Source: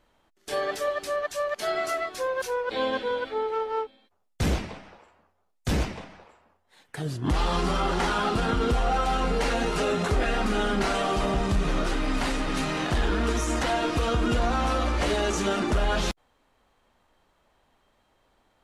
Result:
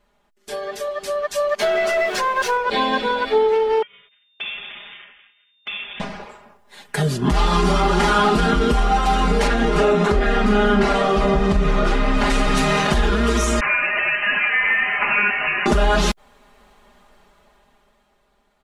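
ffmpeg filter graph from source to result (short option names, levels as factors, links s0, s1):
-filter_complex "[0:a]asettb=1/sr,asplit=3[s0][s1][s2];[s0]atrim=end=1.594[s3];[s1]atrim=start=1.59:end=2.57,asetpts=PTS-STARTPTS,afade=t=in:d=0.004:c=qsin,afade=t=out:st=0.976:d=0.004:c=qsin,aeval=exprs='val(0)+0.5*0.0106*sgn(val(0))':c=same,asplit=2[s4][s5];[s5]highpass=f=720:p=1,volume=3.98,asoftclip=type=tanh:threshold=0.141[s6];[s4][s6]amix=inputs=2:normalize=0,lowpass=f=1800:p=1,volume=0.501[s7];[s2]atrim=start=2.566[s8];[s3][s7]acrossfade=d=0.004:c1=hsin:c2=qsin[s9];[s9][s8]acrossfade=d=0.004:c1=qsin:c2=hsin,asettb=1/sr,asplit=3[s10][s11][s12];[s10]atrim=end=3.824[s13];[s11]atrim=start=3.82:end=6,asetpts=PTS-STARTPTS,afade=t=in:d=0.004:c=qsin,afade=t=out:st=2.176:d=0.004:c=qsin,lowpass=f=2700:t=q:w=0.5098,lowpass=f=2700:t=q:w=0.6013,lowpass=f=2700:t=q:w=0.9,lowpass=f=2700:t=q:w=2.563,afreqshift=-3200,acompressor=threshold=0.00447:ratio=2.5:attack=3.2:release=140:knee=1:detection=peak,aeval=exprs='val(0)*sin(2*PI*430*n/s)':c=same[s14];[s12]atrim=start=5.996[s15];[s13][s14]acrossfade=d=0.004:c1=hsin:c2=qsin[s16];[s16][s15]acrossfade=d=0.004:c1=qsin:c2=hsin,asettb=1/sr,asplit=3[s17][s18][s19];[s17]atrim=end=9.474[s20];[s18]atrim=start=9.47:end=12.3,asetpts=PTS-STARTPTS,afade=t=in:d=0.004:c=qsin,afade=t=out:st=2.826:d=0.004:c=qsin,lowpass=f=2800:p=1,asplit=2[s21][s22];[s22]adelay=43,volume=0.224[s23];[s21][s23]amix=inputs=2:normalize=0,atrim=end_sample=124803[s24];[s19]atrim=start=12.296[s25];[s20][s24]acrossfade=d=0.004:c1=hsin:c2=qsin[s26];[s26][s25]acrossfade=d=0.004:c1=qsin:c2=hsin,asettb=1/sr,asplit=3[s27][s28][s29];[s27]atrim=end=13.604[s30];[s28]atrim=start=13.6:end=15.66,asetpts=PTS-STARTPTS,afade=t=in:d=0.004:c=qsin,afade=t=out:st=2.056:d=0.004:c=qsin,highpass=950,aemphasis=mode=reproduction:type=bsi,lowpass=f=2600:t=q:w=0.5098,lowpass=f=2600:t=q:w=0.6013,lowpass=f=2600:t=q:w=0.9,lowpass=f=2600:t=q:w=2.563,afreqshift=-3100[s31];[s29]atrim=start=15.656[s32];[s30][s31]acrossfade=d=0.004:c1=hsin:c2=qsin[s33];[s33][s32]acrossfade=d=0.004:c1=qsin:c2=hsin,acompressor=threshold=0.0355:ratio=6,aecho=1:1:4.9:0.99,dynaudnorm=f=220:g=13:m=4.73,volume=0.841"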